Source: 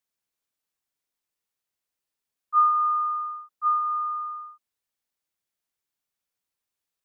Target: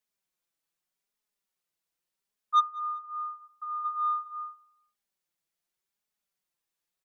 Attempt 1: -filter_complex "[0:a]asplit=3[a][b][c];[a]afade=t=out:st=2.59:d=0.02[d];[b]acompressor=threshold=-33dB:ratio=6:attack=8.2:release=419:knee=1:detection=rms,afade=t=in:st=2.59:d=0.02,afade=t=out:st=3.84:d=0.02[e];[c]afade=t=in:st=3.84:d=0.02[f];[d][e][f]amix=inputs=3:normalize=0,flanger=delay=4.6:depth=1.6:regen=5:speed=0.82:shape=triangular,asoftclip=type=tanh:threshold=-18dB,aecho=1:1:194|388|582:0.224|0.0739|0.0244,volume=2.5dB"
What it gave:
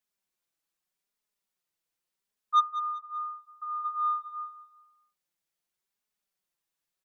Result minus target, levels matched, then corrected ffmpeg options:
echo-to-direct +11.5 dB
-filter_complex "[0:a]asplit=3[a][b][c];[a]afade=t=out:st=2.59:d=0.02[d];[b]acompressor=threshold=-33dB:ratio=6:attack=8.2:release=419:knee=1:detection=rms,afade=t=in:st=2.59:d=0.02,afade=t=out:st=3.84:d=0.02[e];[c]afade=t=in:st=3.84:d=0.02[f];[d][e][f]amix=inputs=3:normalize=0,flanger=delay=4.6:depth=1.6:regen=5:speed=0.82:shape=triangular,asoftclip=type=tanh:threshold=-18dB,aecho=1:1:194|388:0.0596|0.0197,volume=2.5dB"

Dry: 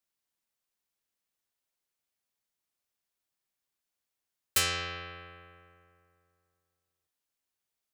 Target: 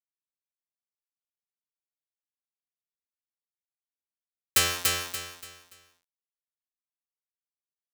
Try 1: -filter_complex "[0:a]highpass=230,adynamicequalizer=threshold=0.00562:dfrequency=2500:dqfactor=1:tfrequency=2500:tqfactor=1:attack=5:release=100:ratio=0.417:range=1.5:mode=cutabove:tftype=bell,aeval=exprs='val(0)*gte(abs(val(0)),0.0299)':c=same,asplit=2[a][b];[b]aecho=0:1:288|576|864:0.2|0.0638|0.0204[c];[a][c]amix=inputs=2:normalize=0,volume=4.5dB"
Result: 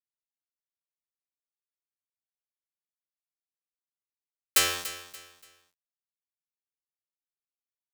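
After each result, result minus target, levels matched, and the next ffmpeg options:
125 Hz band -9.5 dB; echo-to-direct -11 dB
-filter_complex "[0:a]highpass=72,adynamicequalizer=threshold=0.00562:dfrequency=2500:dqfactor=1:tfrequency=2500:tqfactor=1:attack=5:release=100:ratio=0.417:range=1.5:mode=cutabove:tftype=bell,aeval=exprs='val(0)*gte(abs(val(0)),0.0299)':c=same,asplit=2[a][b];[b]aecho=0:1:288|576|864:0.2|0.0638|0.0204[c];[a][c]amix=inputs=2:normalize=0,volume=4.5dB"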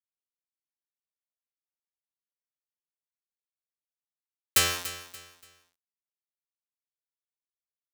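echo-to-direct -11 dB
-filter_complex "[0:a]highpass=72,adynamicequalizer=threshold=0.00562:dfrequency=2500:dqfactor=1:tfrequency=2500:tqfactor=1:attack=5:release=100:ratio=0.417:range=1.5:mode=cutabove:tftype=bell,aeval=exprs='val(0)*gte(abs(val(0)),0.0299)':c=same,asplit=2[a][b];[b]aecho=0:1:288|576|864|1152:0.708|0.227|0.0725|0.0232[c];[a][c]amix=inputs=2:normalize=0,volume=4.5dB"

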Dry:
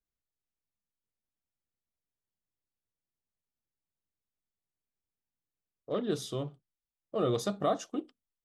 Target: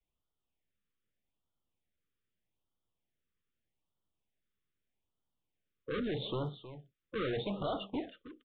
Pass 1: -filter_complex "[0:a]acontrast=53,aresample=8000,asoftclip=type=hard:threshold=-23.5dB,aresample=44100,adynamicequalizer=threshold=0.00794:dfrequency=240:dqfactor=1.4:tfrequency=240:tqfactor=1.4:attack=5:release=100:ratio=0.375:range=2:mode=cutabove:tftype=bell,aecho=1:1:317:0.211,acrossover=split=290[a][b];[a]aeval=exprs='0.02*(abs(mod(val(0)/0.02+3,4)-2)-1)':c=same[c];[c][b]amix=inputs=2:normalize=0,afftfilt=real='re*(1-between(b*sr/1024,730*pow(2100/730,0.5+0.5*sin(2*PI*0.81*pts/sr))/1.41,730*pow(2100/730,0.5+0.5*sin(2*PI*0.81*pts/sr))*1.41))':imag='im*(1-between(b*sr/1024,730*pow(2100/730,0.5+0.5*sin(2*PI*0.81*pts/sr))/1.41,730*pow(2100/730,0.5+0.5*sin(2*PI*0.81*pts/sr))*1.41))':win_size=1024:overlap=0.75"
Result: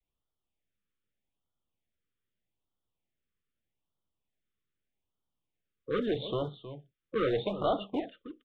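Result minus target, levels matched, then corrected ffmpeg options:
hard clip: distortion -6 dB
-filter_complex "[0:a]acontrast=53,aresample=8000,asoftclip=type=hard:threshold=-32.5dB,aresample=44100,adynamicequalizer=threshold=0.00794:dfrequency=240:dqfactor=1.4:tfrequency=240:tqfactor=1.4:attack=5:release=100:ratio=0.375:range=2:mode=cutabove:tftype=bell,aecho=1:1:317:0.211,acrossover=split=290[a][b];[a]aeval=exprs='0.02*(abs(mod(val(0)/0.02+3,4)-2)-1)':c=same[c];[c][b]amix=inputs=2:normalize=0,afftfilt=real='re*(1-between(b*sr/1024,730*pow(2100/730,0.5+0.5*sin(2*PI*0.81*pts/sr))/1.41,730*pow(2100/730,0.5+0.5*sin(2*PI*0.81*pts/sr))*1.41))':imag='im*(1-between(b*sr/1024,730*pow(2100/730,0.5+0.5*sin(2*PI*0.81*pts/sr))/1.41,730*pow(2100/730,0.5+0.5*sin(2*PI*0.81*pts/sr))*1.41))':win_size=1024:overlap=0.75"

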